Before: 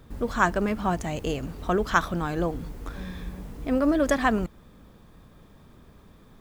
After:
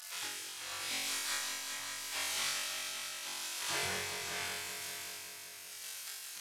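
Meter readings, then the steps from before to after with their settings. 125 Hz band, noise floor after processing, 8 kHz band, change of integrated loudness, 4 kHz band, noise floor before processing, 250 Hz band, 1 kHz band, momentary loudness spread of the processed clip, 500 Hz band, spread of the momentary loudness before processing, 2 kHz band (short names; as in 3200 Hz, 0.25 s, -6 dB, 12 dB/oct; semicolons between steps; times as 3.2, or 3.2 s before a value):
-24.0 dB, -49 dBFS, +7.5 dB, -11.0 dB, +6.0 dB, -53 dBFS, -30.0 dB, -17.0 dB, 9 LU, -21.5 dB, 15 LU, -8.0 dB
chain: delta modulation 64 kbps, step -31.5 dBFS; soft clip -23.5 dBFS, distortion -9 dB; spectral gate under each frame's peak -30 dB weak; flutter echo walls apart 3.7 m, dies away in 0.96 s; tremolo 0.83 Hz, depth 73%; high shelf 7800 Hz -8.5 dB; multi-head echo 0.191 s, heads all three, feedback 52%, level -11 dB; gain +8.5 dB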